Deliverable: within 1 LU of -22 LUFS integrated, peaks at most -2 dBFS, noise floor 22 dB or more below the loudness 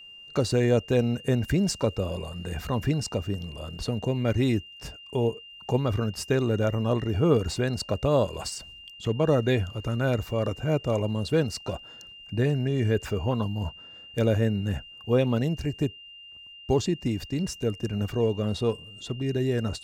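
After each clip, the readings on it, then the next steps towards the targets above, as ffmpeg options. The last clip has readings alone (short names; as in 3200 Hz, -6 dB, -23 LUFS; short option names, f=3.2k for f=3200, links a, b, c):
steady tone 2800 Hz; tone level -44 dBFS; loudness -27.0 LUFS; peak -9.0 dBFS; loudness target -22.0 LUFS
-> -af "bandreject=f=2.8k:w=30"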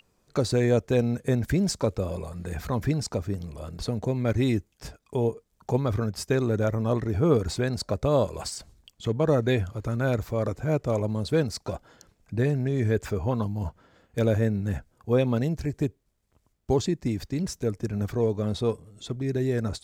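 steady tone none; loudness -27.0 LUFS; peak -9.0 dBFS; loudness target -22.0 LUFS
-> -af "volume=5dB"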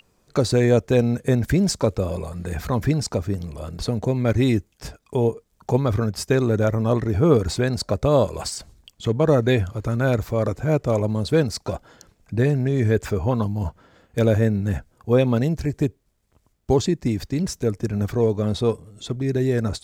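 loudness -22.0 LUFS; peak -4.0 dBFS; noise floor -65 dBFS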